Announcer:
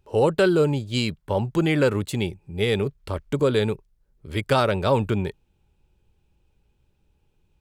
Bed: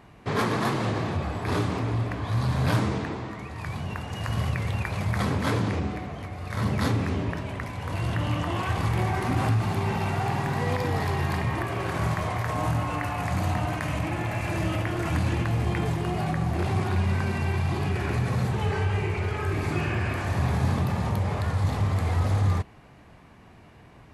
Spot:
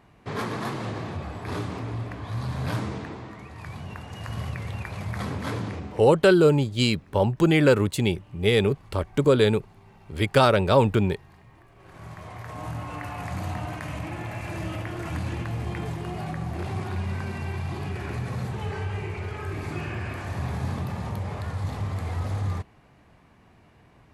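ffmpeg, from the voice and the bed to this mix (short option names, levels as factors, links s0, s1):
-filter_complex "[0:a]adelay=5850,volume=1.26[s0];[1:a]volume=6.31,afade=t=out:st=5.63:d=0.73:silence=0.0891251,afade=t=in:st=11.75:d=1.39:silence=0.0891251[s1];[s0][s1]amix=inputs=2:normalize=0"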